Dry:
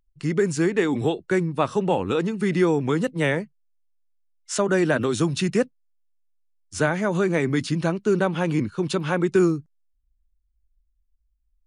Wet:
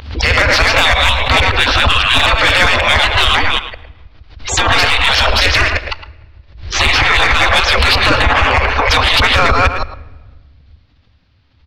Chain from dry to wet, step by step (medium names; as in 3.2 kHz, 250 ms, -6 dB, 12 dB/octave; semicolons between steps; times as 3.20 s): chunks repeated in reverse 156 ms, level -4 dB; steep low-pass 4.7 kHz 48 dB/octave; spectral gate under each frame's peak -25 dB weak; 8.22–8.91 s: peaking EQ 3.7 kHz -12.5 dB 0.94 oct; in parallel at -0.5 dB: compression, threshold -46 dBFS, peak gain reduction 13.5 dB; 4.62–7.09 s: on the sum: feedback comb 57 Hz, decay 0.21 s, harmonics all, mix 30%; saturation -32 dBFS, distortion -13 dB; resonant low shelf 110 Hz +13 dB, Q 1.5; speakerphone echo 110 ms, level -11 dB; on a send at -19.5 dB: reverberation RT60 1.4 s, pre-delay 4 ms; on the sum: loudness maximiser +33 dB; swell ahead of each attack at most 94 dB/s; trim -2 dB